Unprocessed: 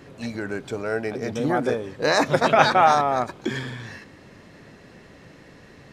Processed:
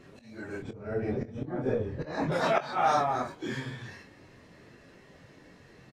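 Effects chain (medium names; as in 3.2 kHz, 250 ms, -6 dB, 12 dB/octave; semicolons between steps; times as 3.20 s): phase randomisation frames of 100 ms; 0.62–2.32 s: RIAA curve playback; slow attack 367 ms; doubling 23 ms -11.5 dB; trim -7 dB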